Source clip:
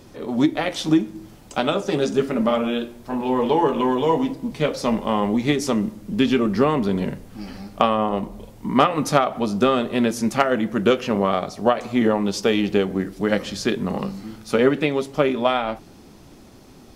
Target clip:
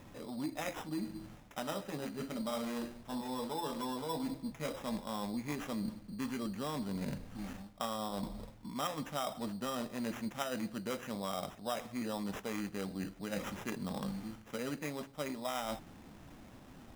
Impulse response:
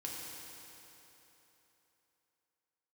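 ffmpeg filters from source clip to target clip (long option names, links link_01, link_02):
-af "areverse,acompressor=threshold=-29dB:ratio=4,areverse,equalizer=frequency=390:width=3.7:gain=-9,acrusher=samples=10:mix=1:aa=0.000001,volume=-6.5dB"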